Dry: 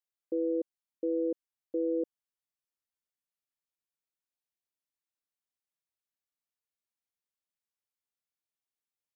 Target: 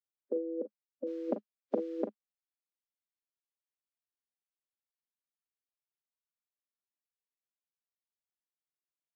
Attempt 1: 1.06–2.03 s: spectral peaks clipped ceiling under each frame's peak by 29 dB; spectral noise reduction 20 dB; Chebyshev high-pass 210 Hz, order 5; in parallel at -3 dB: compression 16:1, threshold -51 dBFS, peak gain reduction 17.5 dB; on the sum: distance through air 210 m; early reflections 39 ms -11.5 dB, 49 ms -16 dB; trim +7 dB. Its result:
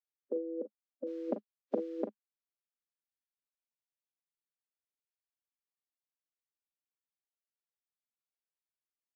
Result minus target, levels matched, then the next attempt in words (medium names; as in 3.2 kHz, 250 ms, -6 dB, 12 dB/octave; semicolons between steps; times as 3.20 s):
compression: peak gain reduction +8 dB
1.06–2.03 s: spectral peaks clipped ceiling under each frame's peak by 29 dB; spectral noise reduction 20 dB; Chebyshev high-pass 210 Hz, order 5; in parallel at -3 dB: compression 16:1, threshold -42.5 dBFS, peak gain reduction 10 dB; on the sum: distance through air 210 m; early reflections 39 ms -11.5 dB, 49 ms -16 dB; trim +7 dB